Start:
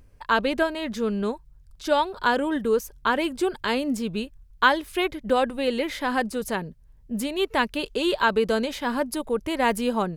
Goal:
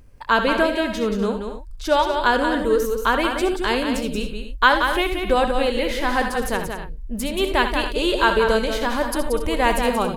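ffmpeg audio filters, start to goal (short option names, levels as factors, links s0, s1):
-filter_complex "[0:a]asubboost=boost=9:cutoff=59,asplit=2[s0][s1];[s1]aecho=0:1:65|76|81|180|246|278:0.266|0.133|0.237|0.473|0.2|0.168[s2];[s0][s2]amix=inputs=2:normalize=0,volume=1.5"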